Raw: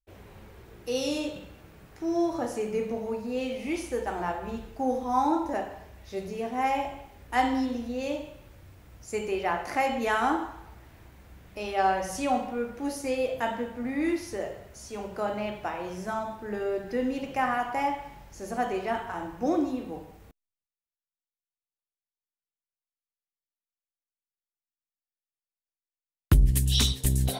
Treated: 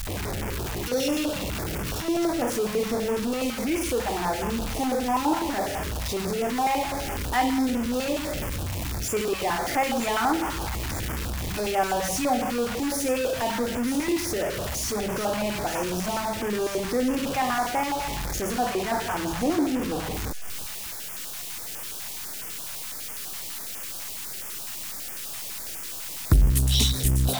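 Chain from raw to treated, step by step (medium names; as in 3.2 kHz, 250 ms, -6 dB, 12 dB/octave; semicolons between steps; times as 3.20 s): jump at every zero crossing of -24 dBFS; feedback echo behind a high-pass 935 ms, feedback 73%, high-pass 2.7 kHz, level -9 dB; step-sequenced notch 12 Hz 380–4000 Hz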